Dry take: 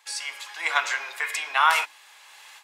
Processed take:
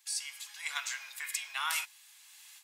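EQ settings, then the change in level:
high-pass filter 480 Hz 12 dB per octave
first difference
−1.5 dB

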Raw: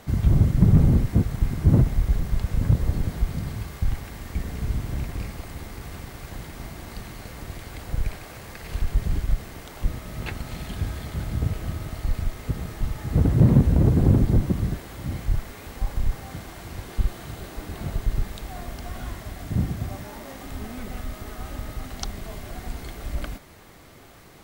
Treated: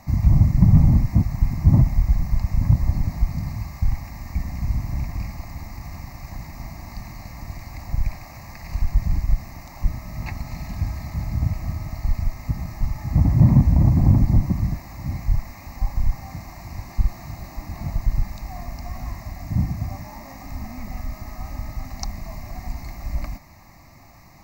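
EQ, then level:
parametric band 3,200 Hz −11 dB 0.58 octaves
phaser with its sweep stopped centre 2,200 Hz, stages 8
+3.5 dB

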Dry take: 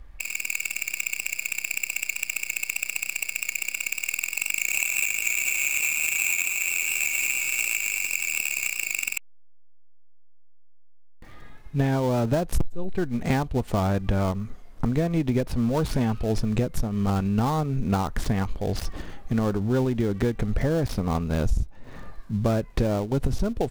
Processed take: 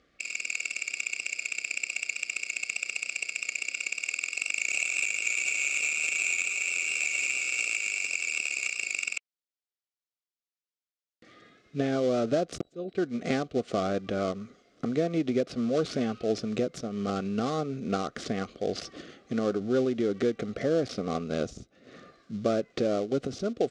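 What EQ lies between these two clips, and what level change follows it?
dynamic equaliser 780 Hz, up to +4 dB, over −39 dBFS, Q 0.87
Butterworth band-reject 910 Hz, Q 2.2
loudspeaker in its box 280–6,700 Hz, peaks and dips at 630 Hz −4 dB, 1,000 Hz −5 dB, 1,700 Hz −7 dB, 2,500 Hz −3 dB
0.0 dB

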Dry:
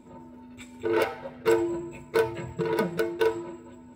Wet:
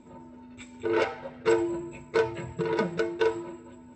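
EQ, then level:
Chebyshev low-pass filter 7,900 Hz, order 6
0.0 dB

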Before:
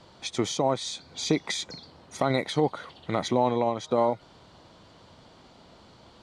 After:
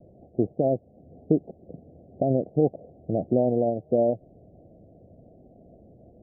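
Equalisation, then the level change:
Butterworth low-pass 720 Hz 96 dB per octave
high-frequency loss of the air 450 metres
+4.0 dB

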